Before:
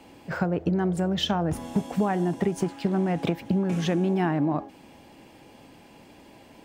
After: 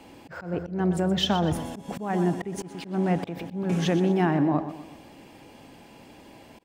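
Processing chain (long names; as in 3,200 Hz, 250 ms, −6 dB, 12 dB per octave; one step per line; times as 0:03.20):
repeating echo 123 ms, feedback 43%, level −12 dB
volume swells 205 ms
level +1.5 dB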